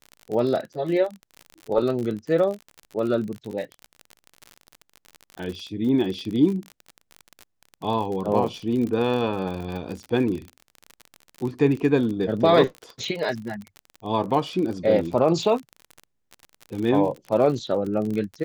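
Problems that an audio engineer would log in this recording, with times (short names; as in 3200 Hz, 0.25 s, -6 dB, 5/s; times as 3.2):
crackle 44/s -29 dBFS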